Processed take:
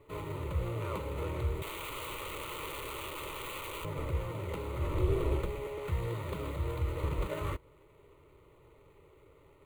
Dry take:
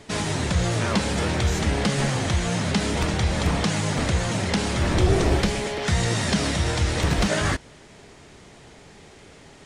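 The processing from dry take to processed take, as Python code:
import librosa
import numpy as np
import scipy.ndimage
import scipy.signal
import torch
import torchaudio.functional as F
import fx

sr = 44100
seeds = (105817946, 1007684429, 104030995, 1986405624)

y = scipy.ndimage.median_filter(x, 15, mode='constant')
y = fx.overflow_wrap(y, sr, gain_db=25.0, at=(1.62, 3.85))
y = fx.fixed_phaser(y, sr, hz=1100.0, stages=8)
y = y * librosa.db_to_amplitude(-8.0)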